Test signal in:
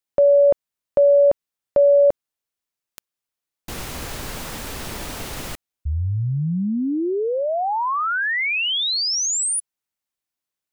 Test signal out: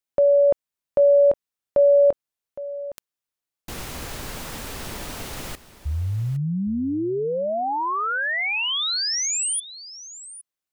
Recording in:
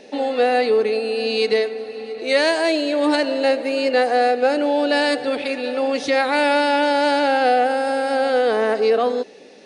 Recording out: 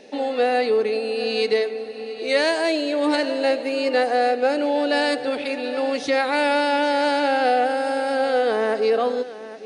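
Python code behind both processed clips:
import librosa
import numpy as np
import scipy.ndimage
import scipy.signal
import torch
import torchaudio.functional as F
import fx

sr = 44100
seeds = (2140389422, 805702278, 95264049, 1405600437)

y = x + 10.0 ** (-15.5 / 20.0) * np.pad(x, (int(813 * sr / 1000.0), 0))[:len(x)]
y = y * librosa.db_to_amplitude(-2.5)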